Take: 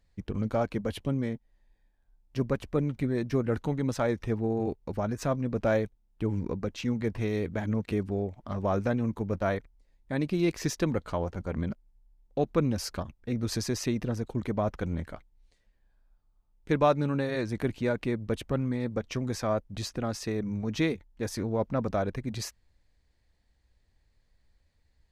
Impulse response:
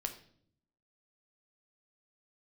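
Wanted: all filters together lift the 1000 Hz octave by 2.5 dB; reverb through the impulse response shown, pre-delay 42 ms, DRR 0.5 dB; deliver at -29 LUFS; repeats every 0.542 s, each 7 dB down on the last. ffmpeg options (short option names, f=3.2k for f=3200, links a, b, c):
-filter_complex "[0:a]equalizer=f=1k:t=o:g=3.5,aecho=1:1:542|1084|1626|2168|2710:0.447|0.201|0.0905|0.0407|0.0183,asplit=2[a][b];[1:a]atrim=start_sample=2205,adelay=42[c];[b][c]afir=irnorm=-1:irlink=0,volume=-0.5dB[d];[a][d]amix=inputs=2:normalize=0,volume=-2.5dB"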